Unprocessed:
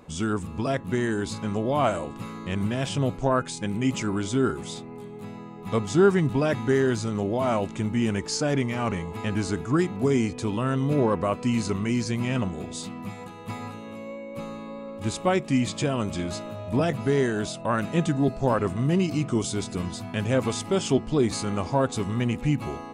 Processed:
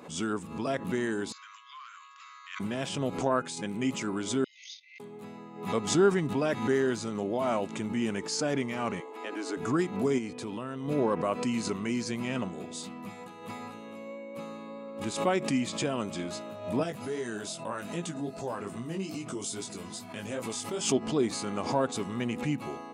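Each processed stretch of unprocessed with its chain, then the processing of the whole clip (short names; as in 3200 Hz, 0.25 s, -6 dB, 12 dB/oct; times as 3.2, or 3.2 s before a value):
1.32–2.6 hard clip -16 dBFS + brick-wall FIR band-pass 1000–7500 Hz + compressor 5:1, threshold -41 dBFS
4.44–5 gate -37 dBFS, range -20 dB + brick-wall FIR band-pass 1900–6700 Hz
9–9.57 elliptic high-pass 280 Hz, stop band 50 dB + high shelf 4800 Hz -6.5 dB
10.18–10.88 bell 6700 Hz -3.5 dB 0.43 oct + compressor 5:1, threshold -26 dBFS
16.83–20.92 high shelf 5700 Hz +10 dB + compressor 2:1, threshold -25 dBFS + chorus 2.5 Hz, delay 17 ms, depth 3.6 ms
whole clip: HPF 190 Hz 12 dB/oct; backwards sustainer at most 95 dB/s; gain -4 dB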